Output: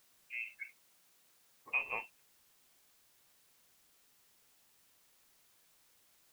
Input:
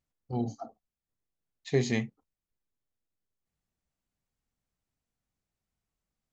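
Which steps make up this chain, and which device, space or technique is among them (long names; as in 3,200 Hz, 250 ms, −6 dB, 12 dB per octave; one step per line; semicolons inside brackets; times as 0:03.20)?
scrambled radio voice (band-pass filter 400–2,800 Hz; voice inversion scrambler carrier 2,900 Hz; white noise bed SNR 20 dB)
0:00.66–0:01.72: high-pass filter 110 Hz 12 dB per octave
level −4.5 dB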